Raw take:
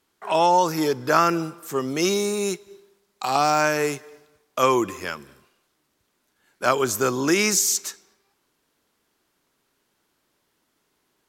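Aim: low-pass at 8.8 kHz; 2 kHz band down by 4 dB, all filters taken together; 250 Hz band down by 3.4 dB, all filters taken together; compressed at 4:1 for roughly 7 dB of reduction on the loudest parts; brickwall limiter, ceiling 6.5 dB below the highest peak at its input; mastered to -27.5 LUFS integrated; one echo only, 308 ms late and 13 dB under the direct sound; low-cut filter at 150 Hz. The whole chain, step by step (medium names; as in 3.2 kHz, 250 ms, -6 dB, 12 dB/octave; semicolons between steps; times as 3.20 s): high-pass 150 Hz; low-pass 8.8 kHz; peaking EQ 250 Hz -4.5 dB; peaking EQ 2 kHz -5.5 dB; compression 4:1, threshold -23 dBFS; peak limiter -18 dBFS; delay 308 ms -13 dB; trim +2 dB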